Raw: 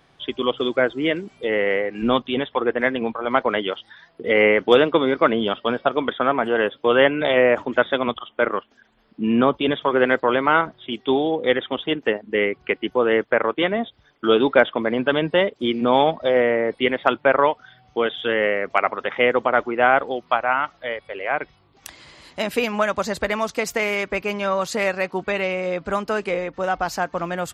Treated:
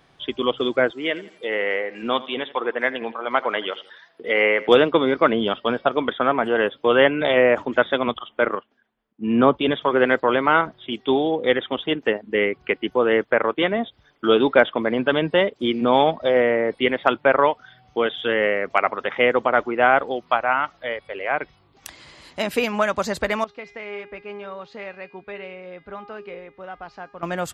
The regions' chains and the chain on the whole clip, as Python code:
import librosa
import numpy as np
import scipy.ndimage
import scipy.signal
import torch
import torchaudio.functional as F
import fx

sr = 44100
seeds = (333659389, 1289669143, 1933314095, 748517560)

y = fx.chain(x, sr, fx.highpass(hz=580.0, slope=6),
    fx.echo_feedback(ms=83, feedback_pct=40, wet_db=-18), at=(0.91, 4.69))
y = fx.chain(y, sr, fx.air_absorb(metres=180.0),
    fx.band_widen(depth_pct=70), at=(8.55, 9.59))
y = fx.chain(y, sr, fx.lowpass(hz=4000.0, slope=24),
    fx.comb_fb(f0_hz=410.0, decay_s=0.74, harmonics='all', damping=0.0, mix_pct=80), at=(23.44, 27.23))